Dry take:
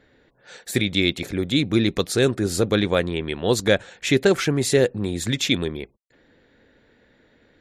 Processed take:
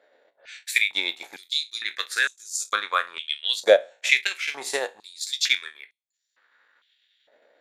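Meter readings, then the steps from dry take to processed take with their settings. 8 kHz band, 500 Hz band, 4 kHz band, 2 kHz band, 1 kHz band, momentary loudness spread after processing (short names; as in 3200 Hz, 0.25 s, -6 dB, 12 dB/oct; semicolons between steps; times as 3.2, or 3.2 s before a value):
-1.5 dB, -5.0 dB, +0.5 dB, +3.0 dB, +2.0 dB, 11 LU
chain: spectral trails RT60 0.36 s; transient shaper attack +6 dB, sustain -11 dB; stepped high-pass 2.2 Hz 610–6300 Hz; gain -6.5 dB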